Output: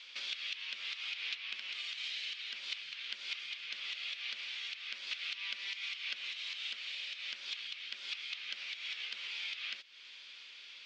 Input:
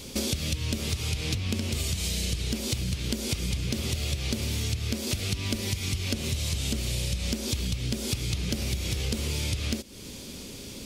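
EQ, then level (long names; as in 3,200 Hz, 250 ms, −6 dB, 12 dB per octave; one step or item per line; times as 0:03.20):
flat-topped band-pass 2,200 Hz, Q 1
high-frequency loss of the air 140 metres
high-shelf EQ 2,400 Hz +11.5 dB
−5.5 dB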